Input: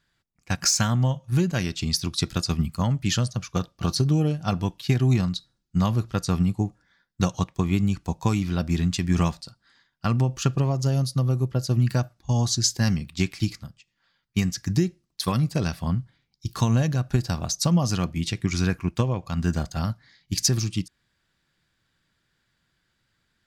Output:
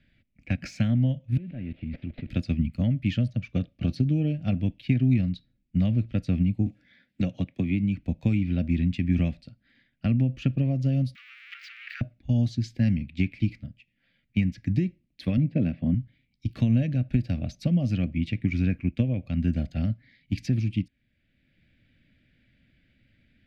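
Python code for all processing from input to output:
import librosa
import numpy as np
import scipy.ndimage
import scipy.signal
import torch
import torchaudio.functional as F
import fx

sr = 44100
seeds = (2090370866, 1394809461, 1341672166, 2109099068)

y = fx.chain(x, sr, fx.delta_mod(bps=32000, step_db=-38.0),
    fx.level_steps(step_db=18),
    fx.air_absorb(metres=330.0), at=(1.37, 2.3))
y = fx.chain(y, sr, fx.highpass(hz=160.0, slope=6),
    fx.band_squash(depth_pct=40), at=(6.66, 7.99))
y = fx.chain(y, sr, fx.zero_step(step_db=-25.5),
    fx.steep_highpass(hz=1200.0, slope=96),
    fx.peak_eq(hz=11000.0, db=-15.0, octaves=0.84), at=(11.15, 12.01))
y = fx.chain(y, sr, fx.bandpass_edges(low_hz=200.0, high_hz=3800.0),
    fx.tilt_eq(slope=-3.0), at=(15.37, 15.94))
y = fx.curve_eq(y, sr, hz=(110.0, 160.0, 260.0, 400.0, 590.0, 1000.0, 2300.0, 6500.0), db=(0, -4, 5, -12, -3, -29, 0, -28))
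y = fx.band_squash(y, sr, depth_pct=40)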